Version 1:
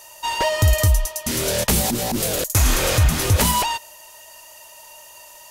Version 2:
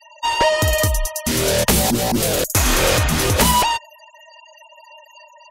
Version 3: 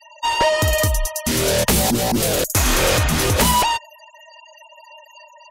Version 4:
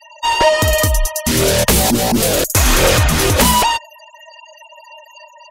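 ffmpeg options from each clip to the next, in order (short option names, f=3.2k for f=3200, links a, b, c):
-filter_complex "[0:a]afftfilt=real='re*gte(hypot(re,im),0.0158)':imag='im*gte(hypot(re,im),0.0158)':win_size=1024:overlap=0.75,highshelf=f=6.3k:g=-4.5,acrossover=split=190[a][b];[a]alimiter=limit=-21dB:level=0:latency=1[c];[c][b]amix=inputs=2:normalize=0,volume=5dB"
-af "acontrast=48,volume=-5.5dB"
-af "aphaser=in_gain=1:out_gain=1:delay=4.8:decay=0.23:speed=0.7:type=triangular,volume=4dB"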